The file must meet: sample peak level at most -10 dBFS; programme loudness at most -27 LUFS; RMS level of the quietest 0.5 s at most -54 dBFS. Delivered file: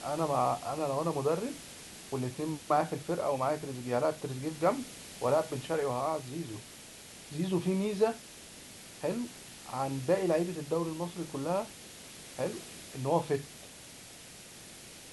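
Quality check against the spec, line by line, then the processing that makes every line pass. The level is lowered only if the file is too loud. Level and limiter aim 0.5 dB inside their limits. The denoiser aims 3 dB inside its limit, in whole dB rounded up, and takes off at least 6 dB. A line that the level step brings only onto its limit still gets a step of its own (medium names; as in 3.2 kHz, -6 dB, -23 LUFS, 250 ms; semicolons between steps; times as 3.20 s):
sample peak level -15.5 dBFS: pass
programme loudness -33.0 LUFS: pass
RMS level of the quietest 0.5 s -50 dBFS: fail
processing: noise reduction 7 dB, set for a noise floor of -50 dBFS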